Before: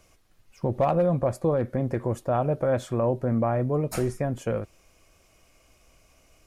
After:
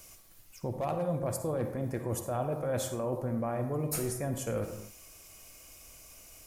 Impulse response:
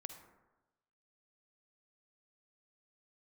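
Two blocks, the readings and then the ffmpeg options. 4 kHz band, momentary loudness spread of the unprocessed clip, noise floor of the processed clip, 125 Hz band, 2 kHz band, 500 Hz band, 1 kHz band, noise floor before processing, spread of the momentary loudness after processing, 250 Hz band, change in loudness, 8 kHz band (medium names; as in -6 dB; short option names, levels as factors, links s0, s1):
+0.5 dB, 8 LU, -55 dBFS, -7.5 dB, -5.5 dB, -8.0 dB, -8.0 dB, -61 dBFS, 18 LU, -7.5 dB, -7.5 dB, +6.0 dB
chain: -filter_complex "[0:a]aemphasis=mode=production:type=75fm,areverse,acompressor=threshold=0.0251:ratio=5,areverse[s0];[1:a]atrim=start_sample=2205,afade=t=out:st=0.33:d=0.01,atrim=end_sample=14994[s1];[s0][s1]afir=irnorm=-1:irlink=0,volume=2"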